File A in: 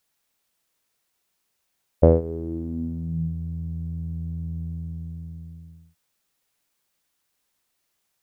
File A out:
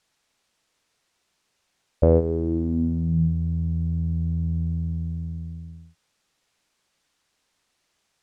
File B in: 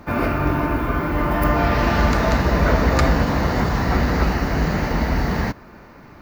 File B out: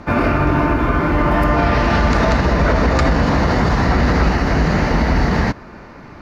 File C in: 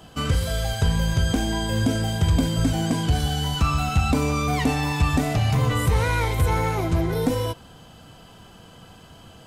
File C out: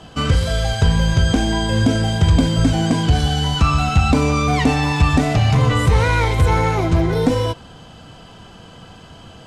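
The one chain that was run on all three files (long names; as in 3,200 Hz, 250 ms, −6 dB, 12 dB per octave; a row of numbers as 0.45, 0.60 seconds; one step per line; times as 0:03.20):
low-pass filter 7,100 Hz 12 dB per octave
brickwall limiter −12 dBFS
normalise the peak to −6 dBFS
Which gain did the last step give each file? +6.0, +6.0, +6.0 decibels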